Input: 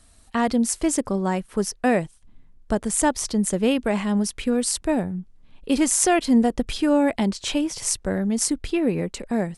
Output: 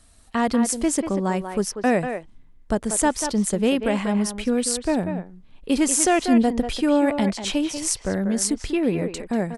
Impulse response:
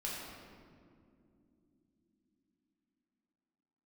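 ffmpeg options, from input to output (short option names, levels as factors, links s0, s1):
-filter_complex "[0:a]asplit=2[s0][s1];[s1]adelay=190,highpass=300,lowpass=3400,asoftclip=type=hard:threshold=0.299,volume=0.447[s2];[s0][s2]amix=inputs=2:normalize=0"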